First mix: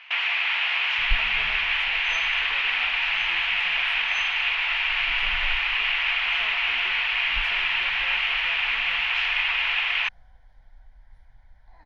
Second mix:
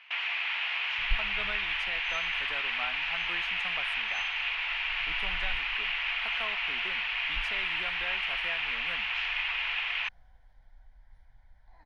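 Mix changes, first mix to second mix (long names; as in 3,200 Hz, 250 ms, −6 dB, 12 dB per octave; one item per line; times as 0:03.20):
speech +4.0 dB
first sound −7.5 dB
second sound −5.0 dB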